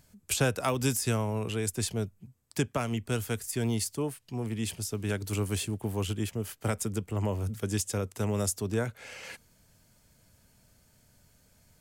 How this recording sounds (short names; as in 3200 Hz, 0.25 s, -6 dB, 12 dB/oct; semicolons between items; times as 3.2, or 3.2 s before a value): noise floor -65 dBFS; spectral tilt -4.5 dB/oct